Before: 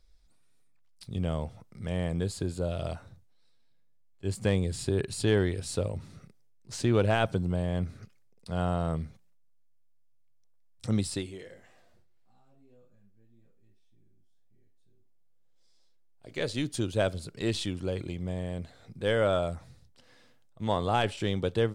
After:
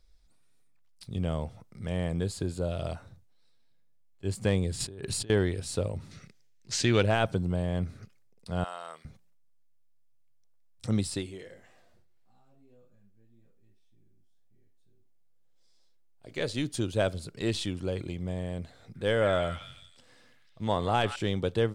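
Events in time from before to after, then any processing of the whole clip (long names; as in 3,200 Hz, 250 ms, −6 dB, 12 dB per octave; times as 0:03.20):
0:04.80–0:05.30: compressor whose output falls as the input rises −38 dBFS
0:06.11–0:07.03: flat-topped bell 3,400 Hz +9.5 dB 2.5 octaves
0:08.64–0:09.05: high-pass filter 1,100 Hz
0:18.78–0:21.16: echo through a band-pass that steps 164 ms, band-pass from 1,800 Hz, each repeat 0.7 octaves, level −4 dB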